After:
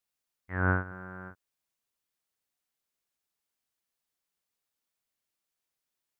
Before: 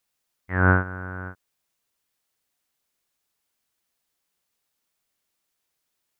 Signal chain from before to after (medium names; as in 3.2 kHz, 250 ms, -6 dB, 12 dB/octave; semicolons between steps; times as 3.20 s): 0.91–1.31 s: comb 5.7 ms, depth 48%; trim -8.5 dB